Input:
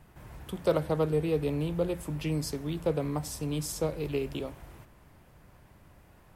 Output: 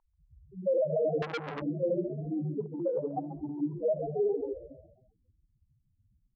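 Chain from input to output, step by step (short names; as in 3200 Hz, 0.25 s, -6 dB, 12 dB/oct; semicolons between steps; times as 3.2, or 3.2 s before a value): shoebox room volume 130 m³, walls mixed, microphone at 5.4 m; loudest bins only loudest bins 2; 2.57–3.61 negative-ratio compressor -23 dBFS, ratio -1; band-pass 940 Hz, Q 3.9; frequency-shifting echo 0.135 s, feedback 45%, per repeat +57 Hz, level -14.5 dB; limiter -30 dBFS, peak gain reduction 7 dB; 1.22–1.62 core saturation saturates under 1800 Hz; gain +8.5 dB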